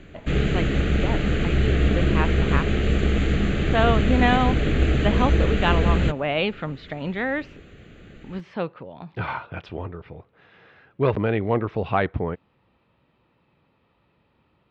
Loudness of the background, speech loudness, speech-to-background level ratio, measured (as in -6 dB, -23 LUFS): -22.5 LUFS, -27.0 LUFS, -4.5 dB